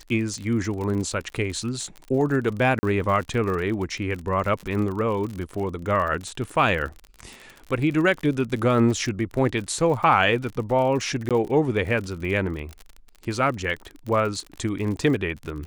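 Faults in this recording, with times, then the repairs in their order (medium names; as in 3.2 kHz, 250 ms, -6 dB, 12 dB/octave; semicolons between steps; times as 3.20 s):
crackle 51 per s -30 dBFS
2.79–2.83 s: dropout 40 ms
11.29–11.31 s: dropout 17 ms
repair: de-click; interpolate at 2.79 s, 40 ms; interpolate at 11.29 s, 17 ms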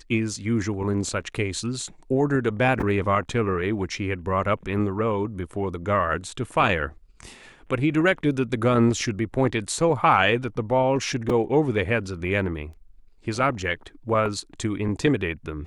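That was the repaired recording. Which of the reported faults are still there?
nothing left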